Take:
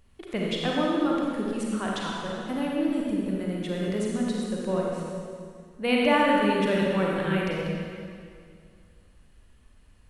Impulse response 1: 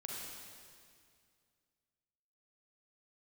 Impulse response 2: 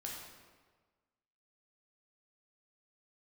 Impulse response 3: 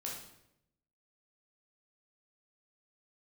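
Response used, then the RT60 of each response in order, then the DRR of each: 1; 2.2, 1.4, 0.80 seconds; −3.0, −2.5, −3.5 decibels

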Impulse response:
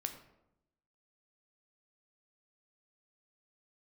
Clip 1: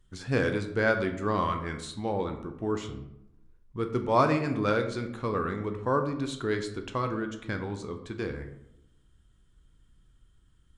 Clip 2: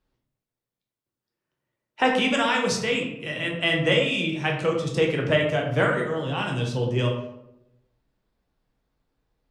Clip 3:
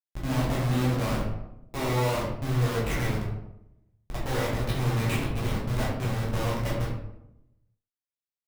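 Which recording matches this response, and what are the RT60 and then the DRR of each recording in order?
1; 0.85, 0.85, 0.85 seconds; 5.5, −0.5, −6.0 decibels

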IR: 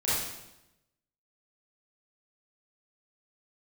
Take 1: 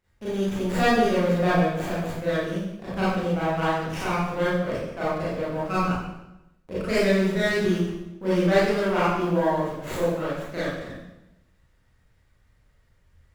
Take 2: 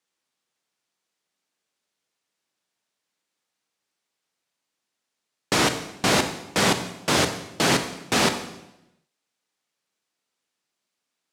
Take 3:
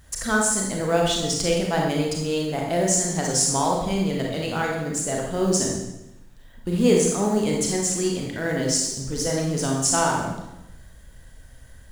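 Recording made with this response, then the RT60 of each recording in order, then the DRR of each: 1; 0.90, 0.90, 0.90 seconds; −11.0, 7.5, −1.5 decibels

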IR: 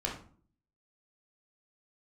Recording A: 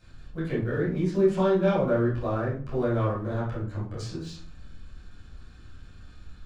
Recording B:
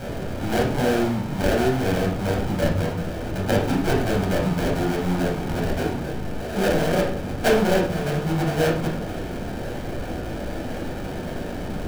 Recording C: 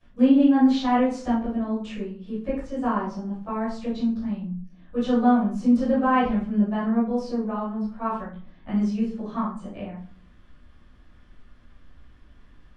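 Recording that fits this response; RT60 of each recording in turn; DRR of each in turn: B; 0.45, 0.45, 0.45 seconds; −11.0, −2.0, −17.0 decibels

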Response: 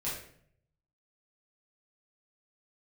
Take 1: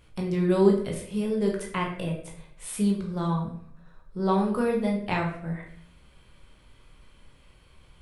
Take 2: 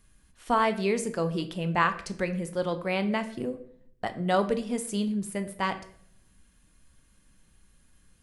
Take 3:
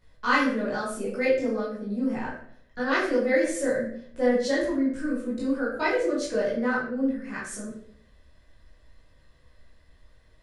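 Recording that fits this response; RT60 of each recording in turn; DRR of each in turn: 3; 0.60, 0.65, 0.60 seconds; −1.0, 8.5, −8.5 decibels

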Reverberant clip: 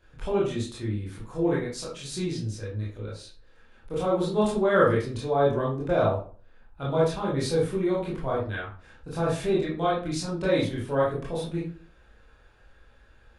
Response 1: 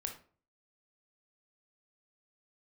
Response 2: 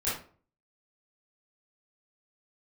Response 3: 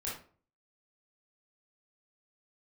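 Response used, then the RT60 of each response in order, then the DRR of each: 3; 0.45, 0.45, 0.45 seconds; 3.0, −11.5, −7.0 decibels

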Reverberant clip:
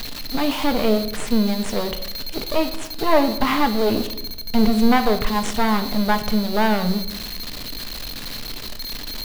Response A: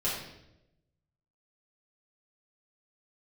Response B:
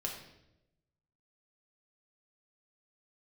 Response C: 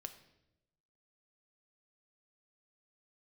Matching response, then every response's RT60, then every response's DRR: C; 0.90, 0.90, 0.90 seconds; −10.0, −1.0, 7.5 decibels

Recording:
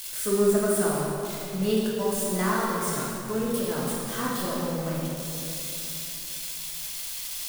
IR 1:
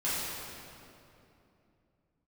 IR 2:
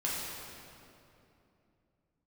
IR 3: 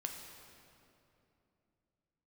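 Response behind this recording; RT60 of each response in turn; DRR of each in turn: 2; 2.8, 2.8, 2.9 seconds; −11.0, −6.5, 2.5 decibels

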